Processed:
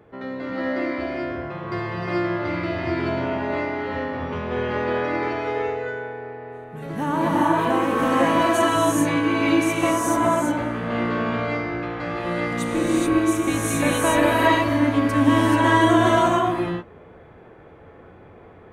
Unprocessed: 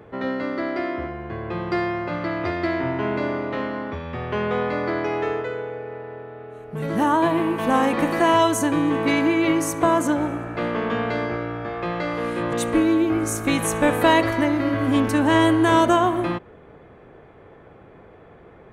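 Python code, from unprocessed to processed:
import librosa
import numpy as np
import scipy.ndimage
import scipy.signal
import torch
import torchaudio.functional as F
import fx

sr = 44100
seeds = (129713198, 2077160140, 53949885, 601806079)

y = fx.rev_gated(x, sr, seeds[0], gate_ms=460, shape='rising', drr_db=-6.5)
y = F.gain(torch.from_numpy(y), -6.5).numpy()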